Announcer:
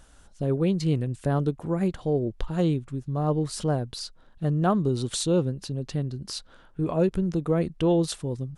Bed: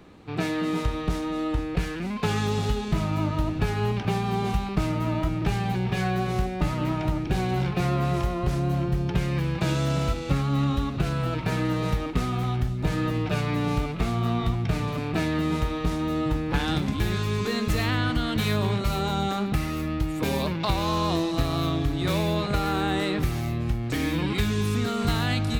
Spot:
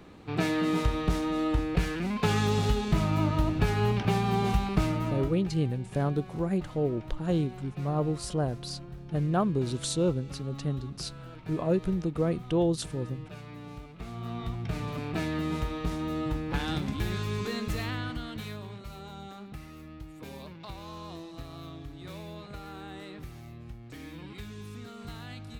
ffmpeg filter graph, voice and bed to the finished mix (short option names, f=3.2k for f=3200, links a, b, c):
-filter_complex "[0:a]adelay=4700,volume=-3.5dB[a];[1:a]volume=12dB,afade=t=out:st=4.77:d=0.71:silence=0.133352,afade=t=in:st=13.9:d=1.09:silence=0.237137,afade=t=out:st=17.4:d=1.26:silence=0.251189[b];[a][b]amix=inputs=2:normalize=0"